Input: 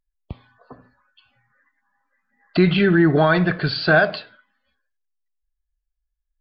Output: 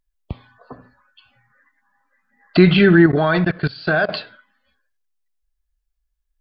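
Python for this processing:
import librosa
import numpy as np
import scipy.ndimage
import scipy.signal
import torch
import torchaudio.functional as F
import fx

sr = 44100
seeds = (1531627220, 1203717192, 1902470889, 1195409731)

y = fx.level_steps(x, sr, step_db=21, at=(3.06, 4.09))
y = y * 10.0 ** (4.5 / 20.0)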